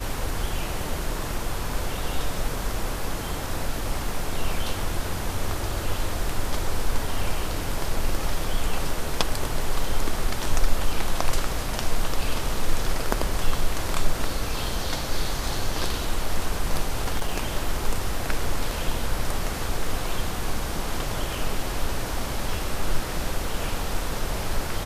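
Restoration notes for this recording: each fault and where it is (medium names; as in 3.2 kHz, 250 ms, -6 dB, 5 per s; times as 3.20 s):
16.94–17.47 s: clipped -17.5 dBFS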